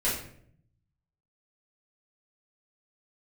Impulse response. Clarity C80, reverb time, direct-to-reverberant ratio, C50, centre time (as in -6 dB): 8.0 dB, 0.65 s, -9.5 dB, 3.5 dB, 42 ms